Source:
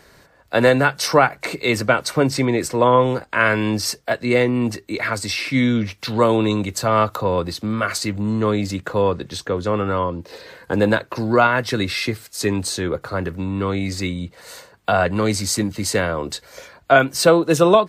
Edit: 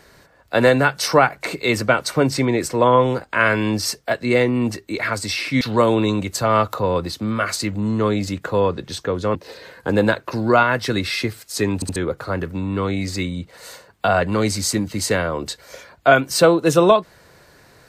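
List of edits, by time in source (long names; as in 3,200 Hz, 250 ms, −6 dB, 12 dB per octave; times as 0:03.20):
0:05.61–0:06.03: remove
0:09.77–0:10.19: remove
0:12.59: stutter in place 0.07 s, 3 plays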